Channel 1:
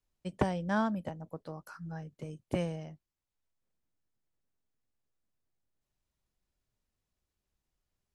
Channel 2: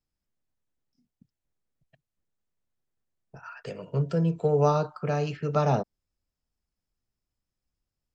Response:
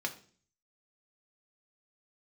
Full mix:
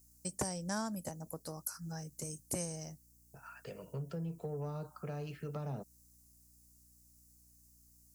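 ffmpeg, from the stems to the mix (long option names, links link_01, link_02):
-filter_complex "[0:a]aexciter=amount=15.4:drive=6.7:freq=5100,aeval=exprs='val(0)+0.000447*(sin(2*PI*60*n/s)+sin(2*PI*2*60*n/s)/2+sin(2*PI*3*60*n/s)/3+sin(2*PI*4*60*n/s)/4+sin(2*PI*5*60*n/s)/5)':channel_layout=same,volume=0dB[link_01];[1:a]acrossover=split=360[link_02][link_03];[link_03]acompressor=threshold=-31dB:ratio=6[link_04];[link_02][link_04]amix=inputs=2:normalize=0,asoftclip=type=tanh:threshold=-17.5dB,volume=-9dB[link_05];[link_01][link_05]amix=inputs=2:normalize=0,acompressor=threshold=-40dB:ratio=2"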